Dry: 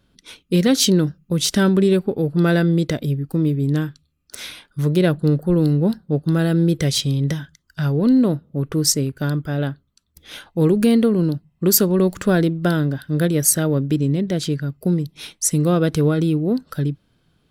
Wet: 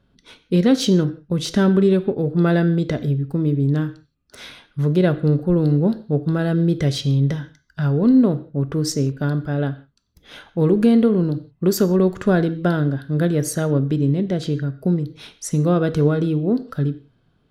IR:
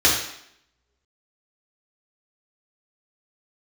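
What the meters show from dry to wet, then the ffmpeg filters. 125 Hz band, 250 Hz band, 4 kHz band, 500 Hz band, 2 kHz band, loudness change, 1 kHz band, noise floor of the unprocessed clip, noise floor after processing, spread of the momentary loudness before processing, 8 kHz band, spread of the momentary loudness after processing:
0.0 dB, 0.0 dB, −6.0 dB, +0.5 dB, −2.0 dB, −0.5 dB, 0.0 dB, −66 dBFS, −63 dBFS, 9 LU, −10.5 dB, 9 LU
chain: -filter_complex "[0:a]lowpass=frequency=2000:poles=1,asplit=2[link_01][link_02];[1:a]atrim=start_sample=2205,afade=type=out:start_time=0.23:duration=0.01,atrim=end_sample=10584[link_03];[link_02][link_03]afir=irnorm=-1:irlink=0,volume=-29.5dB[link_04];[link_01][link_04]amix=inputs=2:normalize=0"

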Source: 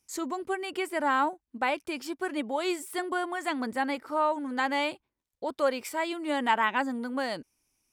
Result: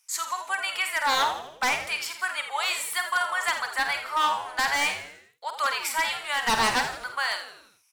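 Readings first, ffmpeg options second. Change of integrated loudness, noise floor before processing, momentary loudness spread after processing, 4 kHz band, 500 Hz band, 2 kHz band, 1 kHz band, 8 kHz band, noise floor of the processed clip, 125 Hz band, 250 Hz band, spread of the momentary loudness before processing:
+4.0 dB, −85 dBFS, 7 LU, +10.5 dB, −6.5 dB, +7.0 dB, +3.0 dB, +11.5 dB, −61 dBFS, can't be measured, −11.0 dB, 8 LU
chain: -filter_complex "[0:a]highpass=frequency=1000:width=0.5412,highpass=frequency=1000:width=1.3066,aeval=exprs='0.0501*(abs(mod(val(0)/0.0501+3,4)-2)-1)':channel_layout=same,asplit=2[link_01][link_02];[link_02]adelay=49,volume=-9dB[link_03];[link_01][link_03]amix=inputs=2:normalize=0,asplit=6[link_04][link_05][link_06][link_07][link_08][link_09];[link_05]adelay=83,afreqshift=-97,volume=-10.5dB[link_10];[link_06]adelay=166,afreqshift=-194,volume=-16.7dB[link_11];[link_07]adelay=249,afreqshift=-291,volume=-22.9dB[link_12];[link_08]adelay=332,afreqshift=-388,volume=-29.1dB[link_13];[link_09]adelay=415,afreqshift=-485,volume=-35.3dB[link_14];[link_04][link_10][link_11][link_12][link_13][link_14]amix=inputs=6:normalize=0,volume=9dB"

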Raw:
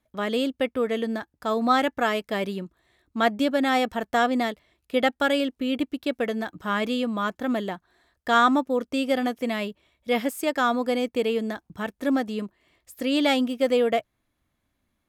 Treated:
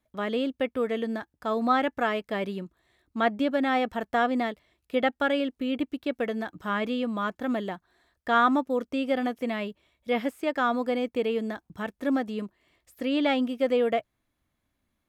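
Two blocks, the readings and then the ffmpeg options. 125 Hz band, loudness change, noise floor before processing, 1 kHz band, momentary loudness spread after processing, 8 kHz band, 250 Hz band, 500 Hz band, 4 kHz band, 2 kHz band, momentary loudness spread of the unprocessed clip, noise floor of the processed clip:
can't be measured, −2.5 dB, −77 dBFS, −2.5 dB, 10 LU, below −10 dB, −2.5 dB, −2.5 dB, −6.0 dB, −3.0 dB, 11 LU, −80 dBFS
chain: -filter_complex "[0:a]acrossover=split=3500[link_01][link_02];[link_02]acompressor=threshold=-51dB:ratio=4:attack=1:release=60[link_03];[link_01][link_03]amix=inputs=2:normalize=0,volume=-2.5dB"

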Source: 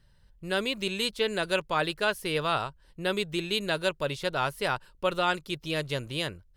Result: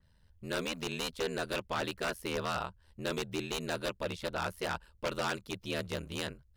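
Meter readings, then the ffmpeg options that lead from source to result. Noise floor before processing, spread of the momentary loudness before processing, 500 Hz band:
−61 dBFS, 5 LU, −7.0 dB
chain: -af "aeval=exprs='val(0)*sin(2*PI*40*n/s)':channel_layout=same,aeval=exprs='0.0631*(abs(mod(val(0)/0.0631+3,4)-2)-1)':channel_layout=same,adynamicequalizer=threshold=0.00562:dfrequency=3300:dqfactor=0.7:tfrequency=3300:tqfactor=0.7:attack=5:release=100:ratio=0.375:range=1.5:mode=cutabove:tftype=highshelf,volume=-1.5dB"

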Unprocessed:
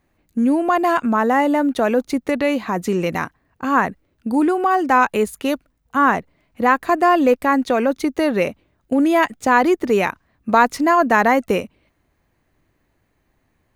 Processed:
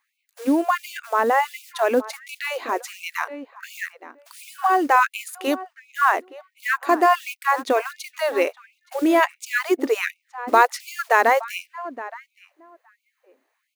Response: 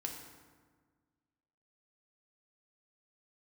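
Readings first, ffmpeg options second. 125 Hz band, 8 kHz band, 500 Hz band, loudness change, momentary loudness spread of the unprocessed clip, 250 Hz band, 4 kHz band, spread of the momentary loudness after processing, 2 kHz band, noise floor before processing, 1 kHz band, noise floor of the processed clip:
below −25 dB, 0.0 dB, −4.5 dB, −3.5 dB, 9 LU, −9.0 dB, −0.5 dB, 16 LU, −1.5 dB, −67 dBFS, −3.0 dB, −75 dBFS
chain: -filter_complex "[0:a]acrusher=bits=7:mode=log:mix=0:aa=0.000001,asplit=2[link_01][link_02];[link_02]adelay=869,lowpass=frequency=1600:poles=1,volume=-15dB,asplit=2[link_03][link_04];[link_04]adelay=869,lowpass=frequency=1600:poles=1,volume=0.15[link_05];[link_01][link_03][link_05]amix=inputs=3:normalize=0,afftfilt=real='re*gte(b*sr/1024,230*pow(2200/230,0.5+0.5*sin(2*PI*1.4*pts/sr)))':imag='im*gte(b*sr/1024,230*pow(2200/230,0.5+0.5*sin(2*PI*1.4*pts/sr)))':win_size=1024:overlap=0.75,volume=-1dB"

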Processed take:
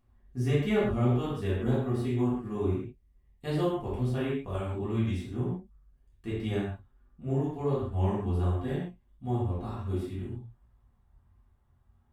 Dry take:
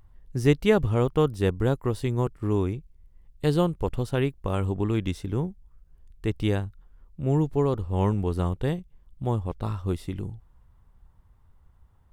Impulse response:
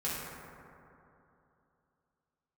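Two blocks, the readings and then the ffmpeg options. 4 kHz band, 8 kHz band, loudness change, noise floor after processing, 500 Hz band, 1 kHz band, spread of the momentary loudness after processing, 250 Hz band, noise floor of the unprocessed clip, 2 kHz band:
−6.0 dB, can't be measured, −4.0 dB, −66 dBFS, −5.5 dB, −5.0 dB, 13 LU, −3.5 dB, −59 dBFS, −5.0 dB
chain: -filter_complex "[0:a]flanger=delay=19:depth=5.3:speed=1.4[link_01];[1:a]atrim=start_sample=2205,afade=type=out:start_time=0.28:duration=0.01,atrim=end_sample=12789,asetrate=66150,aresample=44100[link_02];[link_01][link_02]afir=irnorm=-1:irlink=0,volume=-4dB"

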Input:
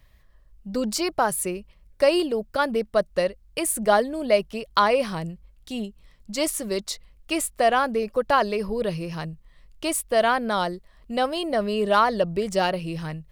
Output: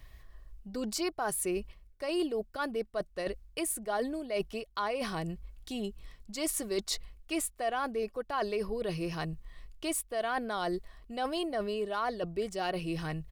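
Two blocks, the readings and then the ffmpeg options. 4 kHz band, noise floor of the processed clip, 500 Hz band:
−9.0 dB, −59 dBFS, −11.0 dB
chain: -af "areverse,acompressor=threshold=-34dB:ratio=6,areverse,aecho=1:1:2.7:0.36,volume=2.5dB"

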